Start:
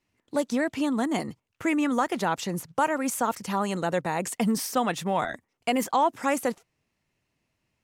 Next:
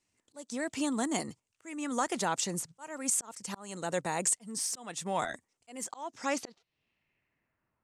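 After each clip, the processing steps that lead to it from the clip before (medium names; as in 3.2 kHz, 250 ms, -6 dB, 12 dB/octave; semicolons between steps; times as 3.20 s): slow attack 440 ms; low-pass sweep 8.3 kHz -> 1.2 kHz, 5.86–7.83 s; tone controls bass -2 dB, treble +6 dB; trim -5 dB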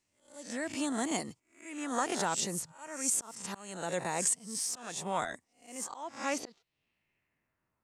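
reverse spectral sustain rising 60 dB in 0.39 s; trim -2.5 dB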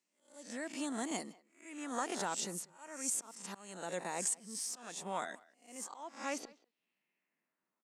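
brick-wall FIR high-pass 160 Hz; speakerphone echo 190 ms, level -22 dB; trim -5.5 dB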